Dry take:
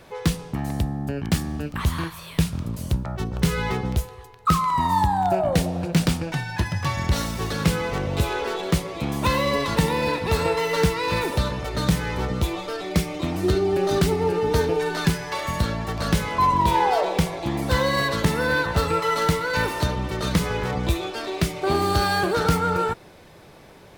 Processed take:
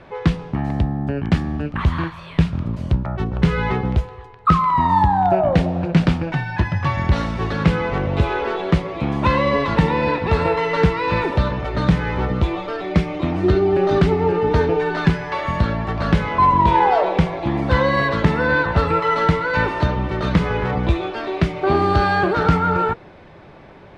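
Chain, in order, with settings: LPF 2500 Hz 12 dB/oct; notch 470 Hz, Q 15; gain +5 dB

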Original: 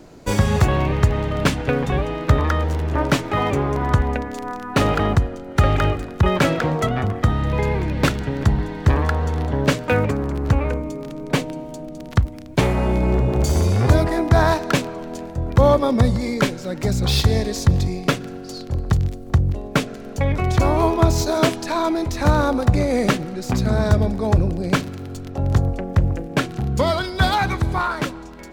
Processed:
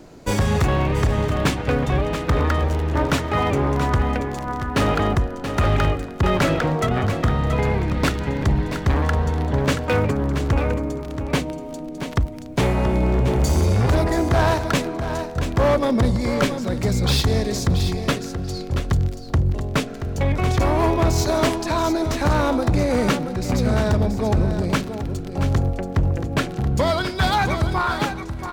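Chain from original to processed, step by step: hard clip -13.5 dBFS, distortion -11 dB; on a send: echo 0.679 s -9 dB

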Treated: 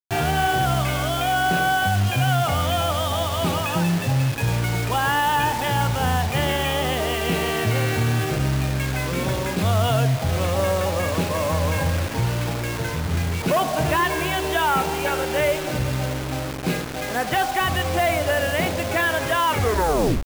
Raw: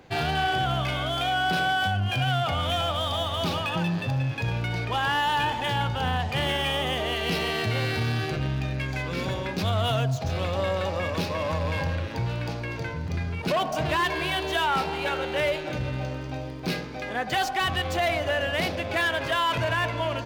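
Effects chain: tape stop at the end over 0.79 s; air absorption 320 m; requantised 6-bit, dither none; gain +6 dB

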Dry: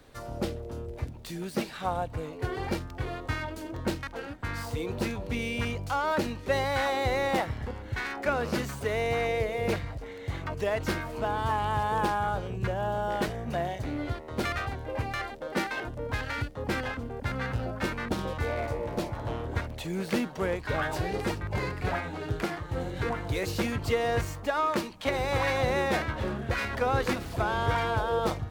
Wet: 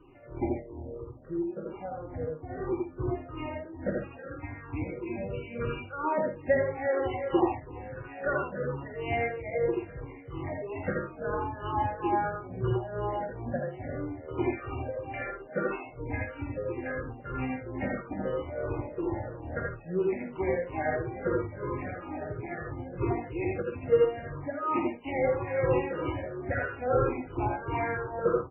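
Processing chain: moving spectral ripple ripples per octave 0.64, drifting -3 Hz, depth 22 dB; 0.82–3.37 LPF 1600 Hz 12 dB/oct; bell 360 Hz +9 dB 1.5 oct; notch comb 220 Hz; tremolo 2.3 Hz, depth 81%; tapped delay 49/50/77/85/135 ms -16/-9/-4.5/-3.5/-11.5 dB; gain -8.5 dB; MP3 8 kbps 12000 Hz

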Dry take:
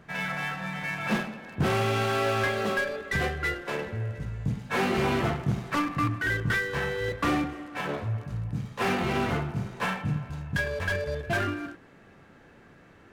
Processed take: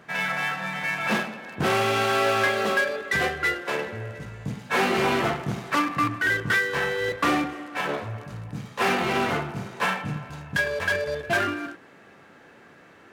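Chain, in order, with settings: HPF 350 Hz 6 dB/oct; gain +5.5 dB

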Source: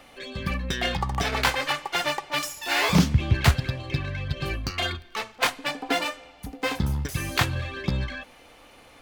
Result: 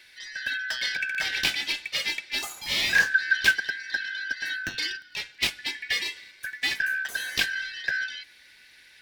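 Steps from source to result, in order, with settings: four-band scrambler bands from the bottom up 4123; 6.16–6.74 sample leveller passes 1; gain -2.5 dB

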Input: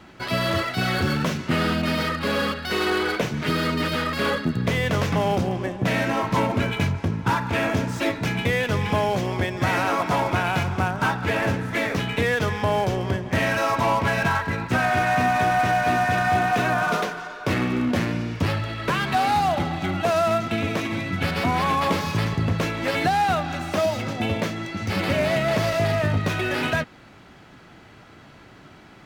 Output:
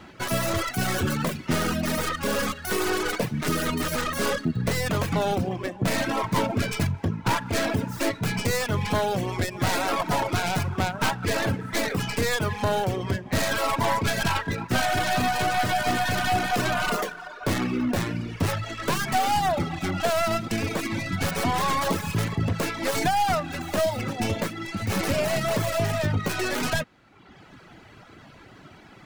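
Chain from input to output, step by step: tracing distortion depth 0.27 ms; reverb removal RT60 0.93 s; in parallel at -1 dB: limiter -21.5 dBFS, peak gain reduction 11 dB; on the sum: gain -4 dB

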